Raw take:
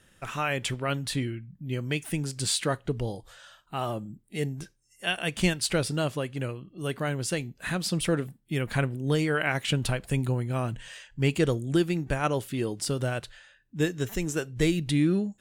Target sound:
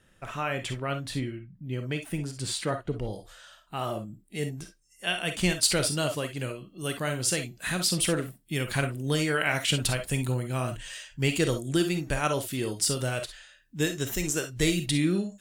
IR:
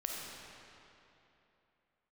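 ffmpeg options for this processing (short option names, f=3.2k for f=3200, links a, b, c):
-filter_complex "[0:a]asetnsamples=n=441:p=0,asendcmd='3.13 highshelf g 3;5.63 highshelf g 9.5',highshelf=f=2.9k:g=-5[a];[1:a]atrim=start_sample=2205,atrim=end_sample=3087[b];[a][b]afir=irnorm=-1:irlink=0"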